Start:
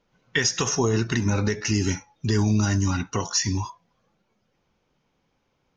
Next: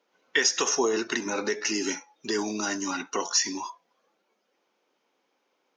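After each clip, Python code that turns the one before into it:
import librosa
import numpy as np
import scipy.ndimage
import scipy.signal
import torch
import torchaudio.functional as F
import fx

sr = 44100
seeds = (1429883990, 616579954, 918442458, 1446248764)

y = scipy.signal.sosfilt(scipy.signal.butter(4, 300.0, 'highpass', fs=sr, output='sos'), x)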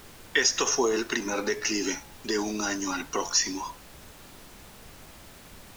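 y = fx.dmg_noise_colour(x, sr, seeds[0], colour='pink', level_db=-48.0)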